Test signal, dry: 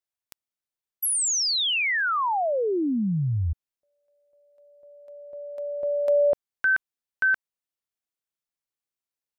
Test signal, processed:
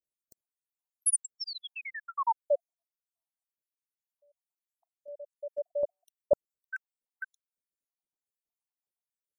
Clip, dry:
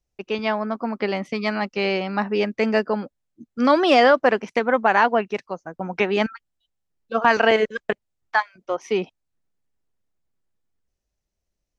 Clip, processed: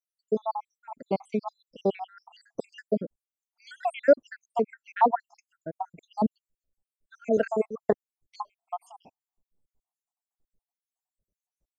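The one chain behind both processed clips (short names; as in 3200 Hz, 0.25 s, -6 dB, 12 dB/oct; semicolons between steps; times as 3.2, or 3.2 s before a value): random spectral dropouts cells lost 79%; band shelf 2600 Hz -15.5 dB 2.3 oct; gain +2 dB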